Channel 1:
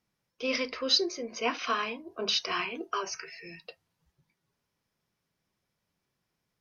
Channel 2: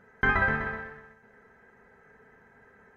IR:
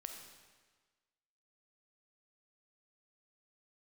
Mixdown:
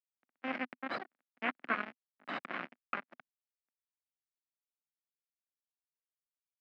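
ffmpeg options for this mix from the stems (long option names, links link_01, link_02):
-filter_complex "[0:a]aeval=exprs='0.282*(cos(1*acos(clip(val(0)/0.282,-1,1)))-cos(1*PI/2))+0.1*(cos(6*acos(clip(val(0)/0.282,-1,1)))-cos(6*PI/2))':channel_layout=same,highpass=frequency=520:poles=1,bandreject=frequency=860:width=5.2,volume=-2dB,asplit=3[link_01][link_02][link_03];[link_02]volume=-17.5dB[link_04];[link_03]volume=-20dB[link_05];[1:a]volume=-15.5dB[link_06];[2:a]atrim=start_sample=2205[link_07];[link_04][link_07]afir=irnorm=-1:irlink=0[link_08];[link_05]aecho=0:1:245|490|735|980|1225|1470|1715|1960|2205:1|0.58|0.336|0.195|0.113|0.0656|0.0381|0.0221|0.0128[link_09];[link_01][link_06][link_08][link_09]amix=inputs=4:normalize=0,acrusher=bits=3:mix=0:aa=0.5,highpass=frequency=200:width=0.5412,highpass=frequency=200:width=1.3066,equalizer=frequency=250:width_type=q:width=4:gain=5,equalizer=frequency=430:width_type=q:width=4:gain=-9,equalizer=frequency=1000:width_type=q:width=4:gain=-5,lowpass=frequency=2000:width=0.5412,lowpass=frequency=2000:width=1.3066"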